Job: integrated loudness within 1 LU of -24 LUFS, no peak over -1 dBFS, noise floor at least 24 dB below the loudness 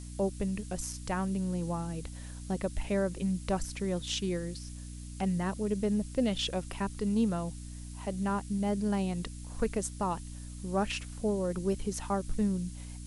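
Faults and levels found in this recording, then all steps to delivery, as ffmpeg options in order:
hum 60 Hz; harmonics up to 300 Hz; hum level -41 dBFS; noise floor -43 dBFS; noise floor target -57 dBFS; loudness -33.0 LUFS; peak -17.0 dBFS; loudness target -24.0 LUFS
-> -af "bandreject=f=60:t=h:w=4,bandreject=f=120:t=h:w=4,bandreject=f=180:t=h:w=4,bandreject=f=240:t=h:w=4,bandreject=f=300:t=h:w=4"
-af "afftdn=nr=14:nf=-43"
-af "volume=9dB"

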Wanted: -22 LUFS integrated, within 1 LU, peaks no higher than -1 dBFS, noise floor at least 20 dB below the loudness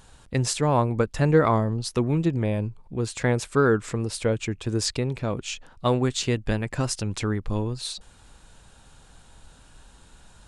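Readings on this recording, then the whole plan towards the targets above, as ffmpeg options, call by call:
loudness -25.5 LUFS; peak -7.5 dBFS; loudness target -22.0 LUFS
-> -af "volume=3.5dB"

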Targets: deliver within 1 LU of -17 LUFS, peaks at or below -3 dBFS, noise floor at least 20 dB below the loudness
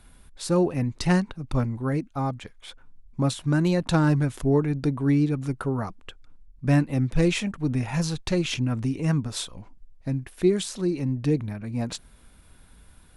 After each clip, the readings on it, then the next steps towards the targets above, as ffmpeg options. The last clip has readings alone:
loudness -25.5 LUFS; peak -7.5 dBFS; loudness target -17.0 LUFS
-> -af "volume=8.5dB,alimiter=limit=-3dB:level=0:latency=1"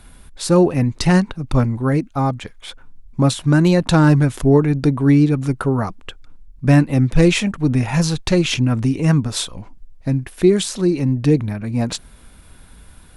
loudness -17.0 LUFS; peak -3.0 dBFS; noise floor -45 dBFS

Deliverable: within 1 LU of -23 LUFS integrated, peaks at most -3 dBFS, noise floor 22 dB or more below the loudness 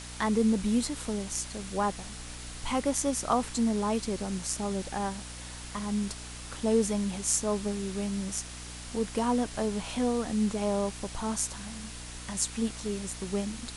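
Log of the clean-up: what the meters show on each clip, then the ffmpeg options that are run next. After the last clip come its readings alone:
hum 60 Hz; harmonics up to 300 Hz; hum level -43 dBFS; noise floor -42 dBFS; noise floor target -53 dBFS; loudness -31.0 LUFS; peak -9.5 dBFS; loudness target -23.0 LUFS
-> -af "bandreject=f=60:t=h:w=4,bandreject=f=120:t=h:w=4,bandreject=f=180:t=h:w=4,bandreject=f=240:t=h:w=4,bandreject=f=300:t=h:w=4"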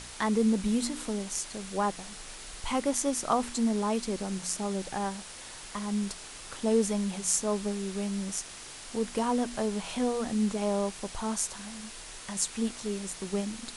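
hum none; noise floor -45 dBFS; noise floor target -53 dBFS
-> -af "afftdn=nr=8:nf=-45"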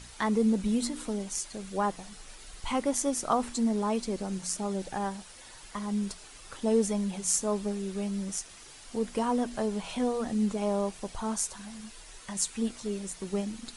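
noise floor -50 dBFS; noise floor target -53 dBFS
-> -af "afftdn=nr=6:nf=-50"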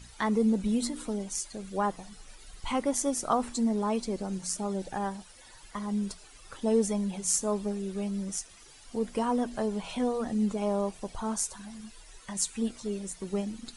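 noise floor -53 dBFS; loudness -31.0 LUFS; peak -9.5 dBFS; loudness target -23.0 LUFS
-> -af "volume=8dB,alimiter=limit=-3dB:level=0:latency=1"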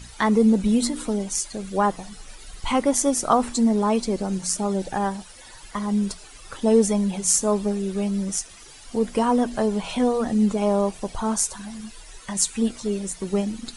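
loudness -23.0 LUFS; peak -3.0 dBFS; noise floor -45 dBFS

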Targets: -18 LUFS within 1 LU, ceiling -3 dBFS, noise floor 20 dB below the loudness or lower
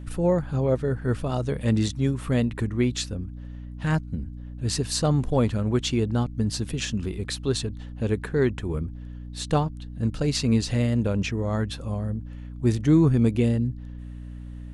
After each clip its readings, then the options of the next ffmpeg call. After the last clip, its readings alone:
hum 60 Hz; harmonics up to 300 Hz; hum level -36 dBFS; loudness -25.5 LUFS; peak -8.5 dBFS; loudness target -18.0 LUFS
-> -af "bandreject=f=60:t=h:w=4,bandreject=f=120:t=h:w=4,bandreject=f=180:t=h:w=4,bandreject=f=240:t=h:w=4,bandreject=f=300:t=h:w=4"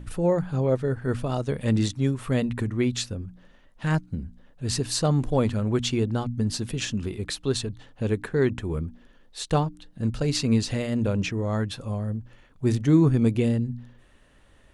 hum none; loudness -26.0 LUFS; peak -8.0 dBFS; loudness target -18.0 LUFS
-> -af "volume=8dB,alimiter=limit=-3dB:level=0:latency=1"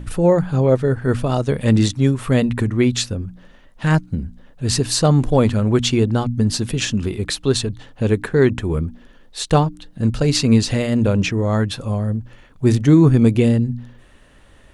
loudness -18.0 LUFS; peak -3.0 dBFS; noise floor -48 dBFS

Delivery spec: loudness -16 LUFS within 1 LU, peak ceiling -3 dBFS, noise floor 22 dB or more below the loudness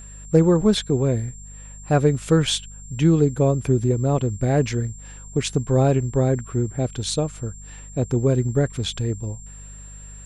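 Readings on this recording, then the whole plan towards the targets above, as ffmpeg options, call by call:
hum 50 Hz; harmonics up to 200 Hz; hum level -39 dBFS; steady tone 7400 Hz; tone level -42 dBFS; loudness -21.5 LUFS; peak -4.0 dBFS; loudness target -16.0 LUFS
-> -af "bandreject=f=50:t=h:w=4,bandreject=f=100:t=h:w=4,bandreject=f=150:t=h:w=4,bandreject=f=200:t=h:w=4"
-af "bandreject=f=7.4k:w=30"
-af "volume=5.5dB,alimiter=limit=-3dB:level=0:latency=1"

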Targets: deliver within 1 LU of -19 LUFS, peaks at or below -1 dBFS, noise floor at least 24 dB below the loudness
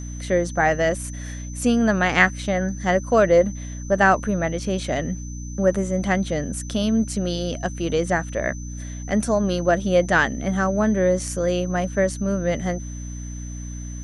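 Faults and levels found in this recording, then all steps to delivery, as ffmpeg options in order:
hum 60 Hz; harmonics up to 300 Hz; hum level -30 dBFS; steady tone 6100 Hz; tone level -41 dBFS; loudness -22.0 LUFS; peak -2.5 dBFS; loudness target -19.0 LUFS
-> -af "bandreject=f=60:t=h:w=4,bandreject=f=120:t=h:w=4,bandreject=f=180:t=h:w=4,bandreject=f=240:t=h:w=4,bandreject=f=300:t=h:w=4"
-af "bandreject=f=6.1k:w=30"
-af "volume=3dB,alimiter=limit=-1dB:level=0:latency=1"

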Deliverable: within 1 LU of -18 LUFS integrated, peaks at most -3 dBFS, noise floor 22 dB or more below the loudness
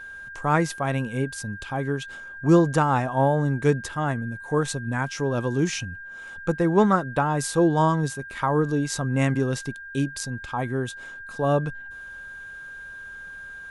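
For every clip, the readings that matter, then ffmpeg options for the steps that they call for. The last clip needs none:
steady tone 1600 Hz; tone level -37 dBFS; loudness -24.5 LUFS; peak -6.5 dBFS; loudness target -18.0 LUFS
-> -af "bandreject=f=1.6k:w=30"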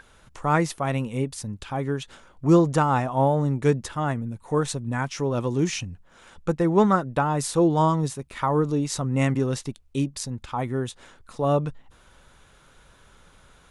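steady tone none; loudness -24.5 LUFS; peak -6.5 dBFS; loudness target -18.0 LUFS
-> -af "volume=6.5dB,alimiter=limit=-3dB:level=0:latency=1"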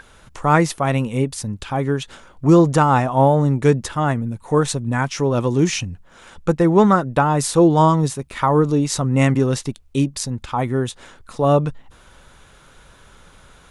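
loudness -18.5 LUFS; peak -3.0 dBFS; noise floor -49 dBFS

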